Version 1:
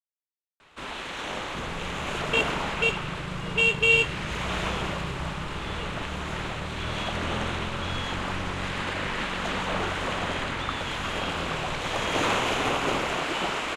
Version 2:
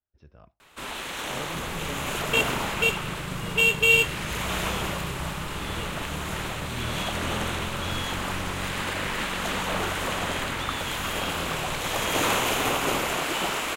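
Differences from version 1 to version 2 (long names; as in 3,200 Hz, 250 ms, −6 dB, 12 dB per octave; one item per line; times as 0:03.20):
speech: unmuted
master: remove high-frequency loss of the air 84 metres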